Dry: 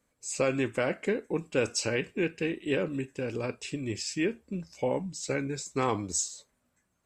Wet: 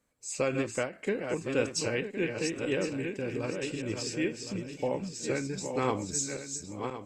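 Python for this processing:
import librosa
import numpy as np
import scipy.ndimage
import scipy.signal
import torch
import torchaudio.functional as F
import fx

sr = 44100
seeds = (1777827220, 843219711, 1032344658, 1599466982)

y = fx.reverse_delay_fb(x, sr, ms=531, feedback_pct=49, wet_db=-5.5)
y = fx.end_taper(y, sr, db_per_s=180.0)
y = F.gain(torch.from_numpy(y), -2.0).numpy()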